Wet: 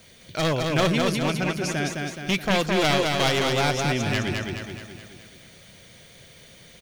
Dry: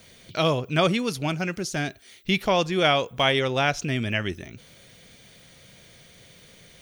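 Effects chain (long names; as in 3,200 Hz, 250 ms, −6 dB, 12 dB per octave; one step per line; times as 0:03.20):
wavefolder on the positive side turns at −19.5 dBFS
on a send: repeating echo 212 ms, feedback 52%, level −3.5 dB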